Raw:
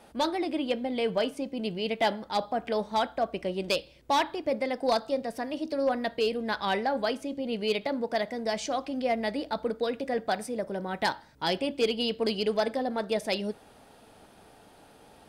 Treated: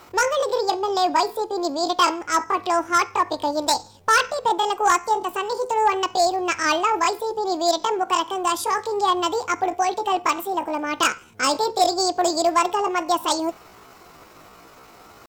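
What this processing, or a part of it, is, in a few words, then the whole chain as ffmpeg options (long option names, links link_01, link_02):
chipmunk voice: -af "asetrate=70004,aresample=44100,atempo=0.629961,volume=8dB"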